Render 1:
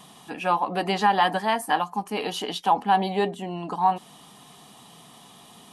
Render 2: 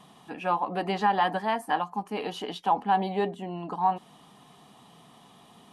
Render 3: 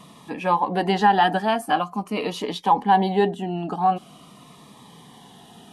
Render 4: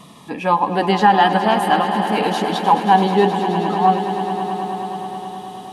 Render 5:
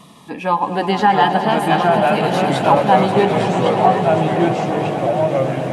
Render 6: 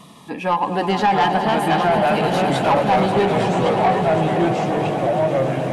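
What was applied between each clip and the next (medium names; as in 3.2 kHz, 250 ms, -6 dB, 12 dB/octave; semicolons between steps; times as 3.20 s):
treble shelf 3.6 kHz -10 dB; trim -3 dB
Shepard-style phaser falling 0.45 Hz; trim +8.5 dB
echo with a slow build-up 106 ms, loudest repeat 5, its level -13.5 dB; trim +4 dB
ever faster or slower copies 621 ms, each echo -3 st, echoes 3; trim -1 dB
saturation -10.5 dBFS, distortion -14 dB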